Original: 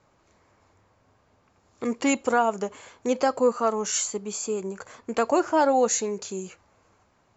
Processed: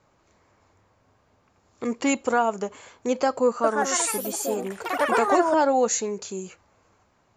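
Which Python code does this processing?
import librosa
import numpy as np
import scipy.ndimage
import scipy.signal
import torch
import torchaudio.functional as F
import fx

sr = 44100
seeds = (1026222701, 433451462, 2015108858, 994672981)

y = fx.echo_pitch(x, sr, ms=179, semitones=4, count=3, db_per_echo=-3.0, at=(3.46, 5.86))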